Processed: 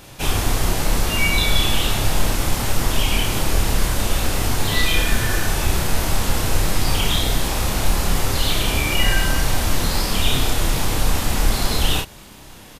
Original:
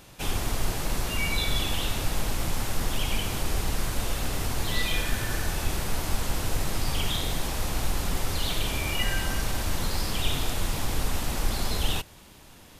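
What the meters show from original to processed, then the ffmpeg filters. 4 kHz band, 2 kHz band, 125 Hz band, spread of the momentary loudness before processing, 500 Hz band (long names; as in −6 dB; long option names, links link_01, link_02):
+9.0 dB, +9.0 dB, +8.5 dB, 3 LU, +8.5 dB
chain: -filter_complex "[0:a]asplit=2[link_01][link_02];[link_02]adelay=30,volume=-3dB[link_03];[link_01][link_03]amix=inputs=2:normalize=0,volume=7dB"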